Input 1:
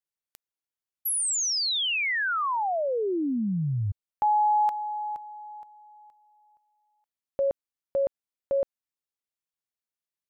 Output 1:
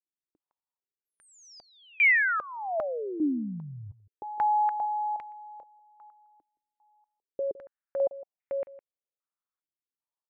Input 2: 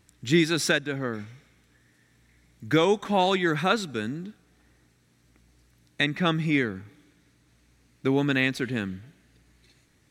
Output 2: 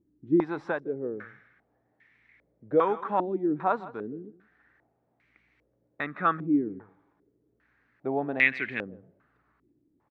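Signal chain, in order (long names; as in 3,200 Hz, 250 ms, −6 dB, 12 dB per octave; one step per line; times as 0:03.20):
low-shelf EQ 270 Hz −12 dB
single-tap delay 160 ms −17.5 dB
low-pass on a step sequencer 2.5 Hz 310–2,200 Hz
level −4 dB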